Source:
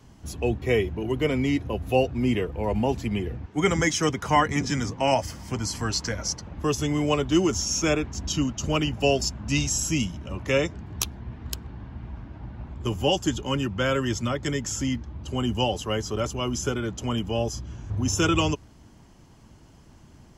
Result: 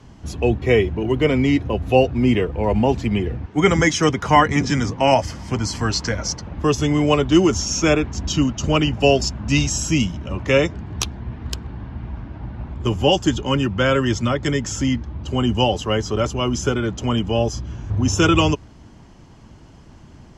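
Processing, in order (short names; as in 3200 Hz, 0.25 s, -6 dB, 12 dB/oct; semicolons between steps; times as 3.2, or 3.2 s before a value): air absorption 62 m; gain +7 dB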